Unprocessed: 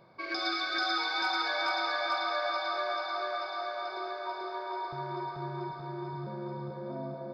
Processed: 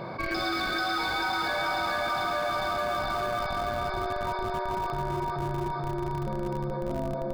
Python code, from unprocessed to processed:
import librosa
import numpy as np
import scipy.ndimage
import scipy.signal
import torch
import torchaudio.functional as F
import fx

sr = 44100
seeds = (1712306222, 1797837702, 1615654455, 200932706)

p1 = fx.high_shelf(x, sr, hz=4000.0, db=-8.5)
p2 = fx.schmitt(p1, sr, flips_db=-31.5)
p3 = p1 + (p2 * librosa.db_to_amplitude(-7.0))
y = fx.env_flatten(p3, sr, amount_pct=70)